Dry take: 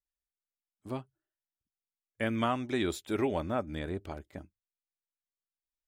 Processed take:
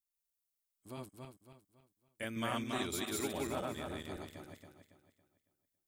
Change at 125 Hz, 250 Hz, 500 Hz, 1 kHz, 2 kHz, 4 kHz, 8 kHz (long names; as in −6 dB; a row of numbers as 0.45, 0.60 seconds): −7.5, −7.0, −7.0, −6.0, −4.0, 0.0, +6.0 decibels